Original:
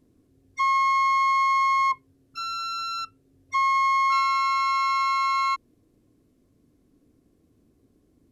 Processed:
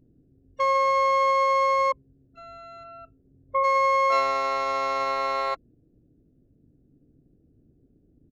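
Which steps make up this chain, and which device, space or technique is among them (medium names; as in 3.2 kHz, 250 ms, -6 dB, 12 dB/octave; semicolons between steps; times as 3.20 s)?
local Wiener filter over 41 samples; 2.83–3.63 s: low-pass 3.4 kHz -> 1.9 kHz 24 dB/octave; octave pedal (harmony voices -12 st -3 dB); trim +1.5 dB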